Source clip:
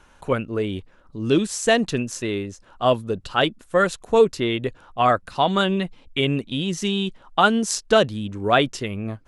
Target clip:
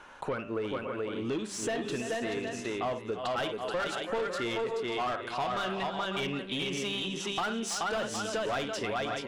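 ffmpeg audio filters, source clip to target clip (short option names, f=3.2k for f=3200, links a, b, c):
-filter_complex "[0:a]aecho=1:1:56|326|429|543|585|761:0.158|0.1|0.531|0.158|0.2|0.133,asetnsamples=n=441:p=0,asendcmd='3.12 lowpass f 3300',asplit=2[a][b];[b]highpass=f=720:p=1,volume=22dB,asoftclip=type=tanh:threshold=-3dB[c];[a][c]amix=inputs=2:normalize=0,lowpass=f=1.8k:p=1,volume=-6dB,bandreject=f=98.31:t=h:w=4,bandreject=f=196.62:t=h:w=4,bandreject=f=294.93:t=h:w=4,bandreject=f=393.24:t=h:w=4,bandreject=f=491.55:t=h:w=4,bandreject=f=589.86:t=h:w=4,bandreject=f=688.17:t=h:w=4,bandreject=f=786.48:t=h:w=4,bandreject=f=884.79:t=h:w=4,bandreject=f=983.1:t=h:w=4,bandreject=f=1.08141k:t=h:w=4,bandreject=f=1.17972k:t=h:w=4,bandreject=f=1.27803k:t=h:w=4,bandreject=f=1.37634k:t=h:w=4,bandreject=f=1.47465k:t=h:w=4,bandreject=f=1.57296k:t=h:w=4,bandreject=f=1.67127k:t=h:w=4,bandreject=f=1.76958k:t=h:w=4,bandreject=f=1.86789k:t=h:w=4,bandreject=f=1.9662k:t=h:w=4,bandreject=f=2.06451k:t=h:w=4,bandreject=f=2.16282k:t=h:w=4,bandreject=f=2.26113k:t=h:w=4,bandreject=f=2.35944k:t=h:w=4,bandreject=f=2.45775k:t=h:w=4,bandreject=f=2.55606k:t=h:w=4,bandreject=f=2.65437k:t=h:w=4,bandreject=f=2.75268k:t=h:w=4,bandreject=f=2.85099k:t=h:w=4,bandreject=f=2.9493k:t=h:w=4,bandreject=f=3.04761k:t=h:w=4,bandreject=f=3.14592k:t=h:w=4,acompressor=threshold=-25dB:ratio=4,volume=-7.5dB"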